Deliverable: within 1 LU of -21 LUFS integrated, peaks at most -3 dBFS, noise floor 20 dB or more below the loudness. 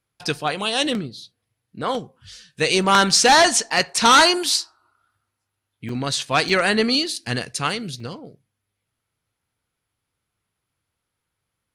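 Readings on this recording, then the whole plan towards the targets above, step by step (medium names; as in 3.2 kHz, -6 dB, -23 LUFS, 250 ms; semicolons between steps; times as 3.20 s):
dropouts 4; longest dropout 3.1 ms; loudness -18.5 LUFS; peak level -2.5 dBFS; loudness target -21.0 LUFS
-> interpolate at 5.89/6.49/7.16/8.00 s, 3.1 ms; trim -2.5 dB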